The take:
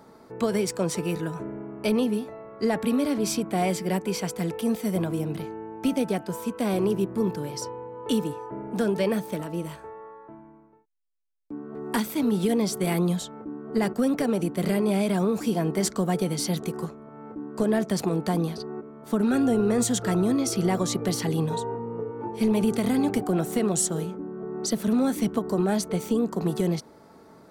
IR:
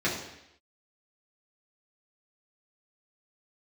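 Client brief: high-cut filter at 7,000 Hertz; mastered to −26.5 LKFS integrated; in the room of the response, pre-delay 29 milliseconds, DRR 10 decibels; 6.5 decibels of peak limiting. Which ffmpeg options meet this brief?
-filter_complex "[0:a]lowpass=7000,alimiter=limit=-21dB:level=0:latency=1,asplit=2[link_01][link_02];[1:a]atrim=start_sample=2205,adelay=29[link_03];[link_02][link_03]afir=irnorm=-1:irlink=0,volume=-21.5dB[link_04];[link_01][link_04]amix=inputs=2:normalize=0,volume=3.5dB"

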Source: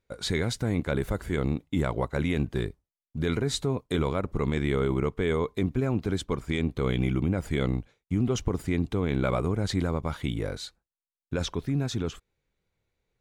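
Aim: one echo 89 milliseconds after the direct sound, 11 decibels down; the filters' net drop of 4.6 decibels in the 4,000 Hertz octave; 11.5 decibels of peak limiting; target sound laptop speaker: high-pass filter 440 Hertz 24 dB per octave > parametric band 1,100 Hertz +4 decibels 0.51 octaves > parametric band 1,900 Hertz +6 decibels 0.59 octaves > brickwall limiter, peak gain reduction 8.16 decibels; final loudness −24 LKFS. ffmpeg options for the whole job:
ffmpeg -i in.wav -af "equalizer=frequency=4000:width_type=o:gain=-6,alimiter=level_in=2.5dB:limit=-24dB:level=0:latency=1,volume=-2.5dB,highpass=frequency=440:width=0.5412,highpass=frequency=440:width=1.3066,equalizer=frequency=1100:width_type=o:width=0.51:gain=4,equalizer=frequency=1900:width_type=o:width=0.59:gain=6,aecho=1:1:89:0.282,volume=19.5dB,alimiter=limit=-12dB:level=0:latency=1" out.wav

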